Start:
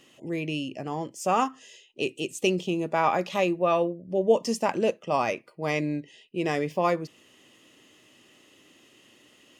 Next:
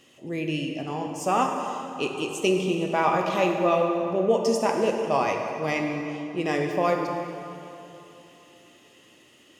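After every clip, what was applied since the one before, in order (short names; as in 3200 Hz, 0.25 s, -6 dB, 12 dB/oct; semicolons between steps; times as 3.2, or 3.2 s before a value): plate-style reverb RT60 3.1 s, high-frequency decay 0.65×, DRR 2 dB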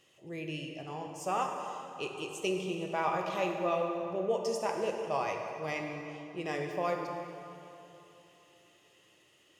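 bell 250 Hz -14 dB 0.35 oct; gain -8.5 dB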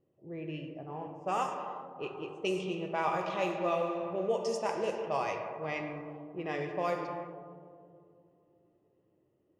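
low-pass opened by the level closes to 420 Hz, open at -27 dBFS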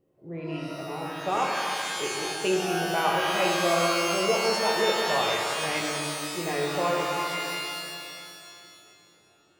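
shimmer reverb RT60 2 s, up +12 st, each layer -2 dB, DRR 2 dB; gain +4 dB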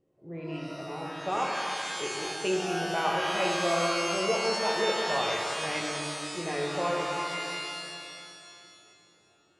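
LPF 9300 Hz 24 dB/oct; gain -3 dB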